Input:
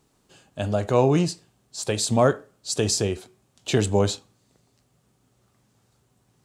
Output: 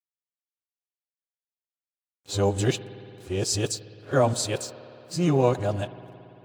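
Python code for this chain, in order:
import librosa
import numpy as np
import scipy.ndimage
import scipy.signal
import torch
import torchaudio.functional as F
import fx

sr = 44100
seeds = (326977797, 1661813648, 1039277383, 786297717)

y = np.flip(x).copy()
y = np.sign(y) * np.maximum(np.abs(y) - 10.0 ** (-46.0 / 20.0), 0.0)
y = fx.notch_comb(y, sr, f0_hz=220.0)
y = fx.rev_spring(y, sr, rt60_s=3.2, pass_ms=(56,), chirp_ms=35, drr_db=14.5)
y = y * librosa.db_to_amplitude(-1.0)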